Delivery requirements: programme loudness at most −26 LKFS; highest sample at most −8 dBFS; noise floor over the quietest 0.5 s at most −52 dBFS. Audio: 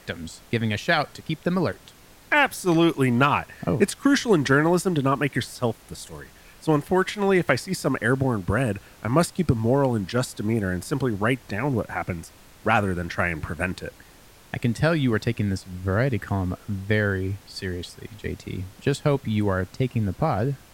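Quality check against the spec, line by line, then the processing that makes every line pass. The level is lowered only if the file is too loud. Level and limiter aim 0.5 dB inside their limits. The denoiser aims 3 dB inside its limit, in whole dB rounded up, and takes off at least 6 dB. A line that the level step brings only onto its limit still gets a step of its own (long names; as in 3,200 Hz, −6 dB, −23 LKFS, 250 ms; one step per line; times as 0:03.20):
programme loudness −24.0 LKFS: out of spec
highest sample −5.5 dBFS: out of spec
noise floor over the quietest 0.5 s −50 dBFS: out of spec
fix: level −2.5 dB
brickwall limiter −8.5 dBFS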